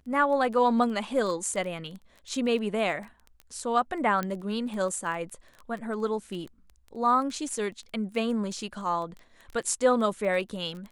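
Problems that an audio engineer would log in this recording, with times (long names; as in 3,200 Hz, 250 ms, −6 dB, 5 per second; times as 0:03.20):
surface crackle 15 per second −35 dBFS
0:04.23: click −17 dBFS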